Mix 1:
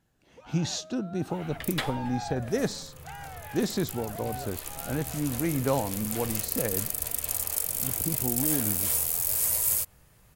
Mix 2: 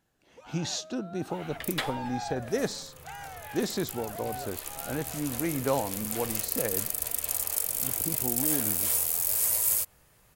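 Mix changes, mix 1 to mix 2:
first sound: remove distance through air 81 m; master: add tone controls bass -6 dB, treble 0 dB

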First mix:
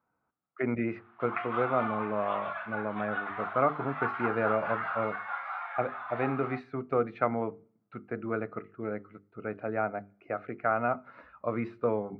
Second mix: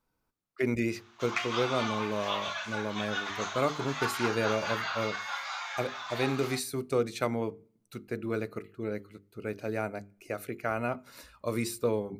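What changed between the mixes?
background +3.0 dB; master: remove cabinet simulation 110–2100 Hz, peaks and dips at 380 Hz -3 dB, 730 Hz +7 dB, 1.3 kHz +7 dB

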